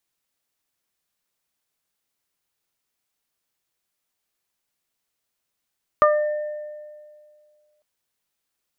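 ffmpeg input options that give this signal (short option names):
-f lavfi -i "aevalsrc='0.2*pow(10,-3*t/2.1)*sin(2*PI*601*t)+0.355*pow(10,-3*t/0.27)*sin(2*PI*1202*t)+0.0473*pow(10,-3*t/1.4)*sin(2*PI*1803*t)':d=1.8:s=44100"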